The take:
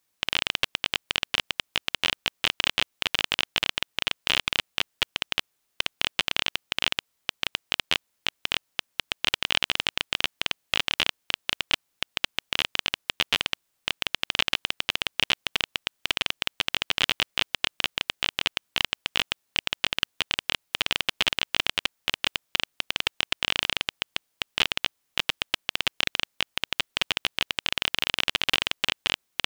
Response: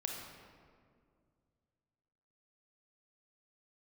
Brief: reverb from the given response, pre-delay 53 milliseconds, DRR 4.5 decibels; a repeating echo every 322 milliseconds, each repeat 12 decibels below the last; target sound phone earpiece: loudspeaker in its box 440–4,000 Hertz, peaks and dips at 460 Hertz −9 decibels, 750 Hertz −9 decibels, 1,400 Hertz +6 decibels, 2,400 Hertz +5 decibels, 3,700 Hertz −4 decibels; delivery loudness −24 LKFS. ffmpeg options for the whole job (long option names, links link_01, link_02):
-filter_complex "[0:a]aecho=1:1:322|644|966:0.251|0.0628|0.0157,asplit=2[link_01][link_02];[1:a]atrim=start_sample=2205,adelay=53[link_03];[link_02][link_03]afir=irnorm=-1:irlink=0,volume=-5.5dB[link_04];[link_01][link_04]amix=inputs=2:normalize=0,highpass=440,equalizer=frequency=460:width_type=q:width=4:gain=-9,equalizer=frequency=750:width_type=q:width=4:gain=-9,equalizer=frequency=1400:width_type=q:width=4:gain=6,equalizer=frequency=2400:width_type=q:width=4:gain=5,equalizer=frequency=3700:width_type=q:width=4:gain=-4,lowpass=frequency=4000:width=0.5412,lowpass=frequency=4000:width=1.3066,volume=1dB"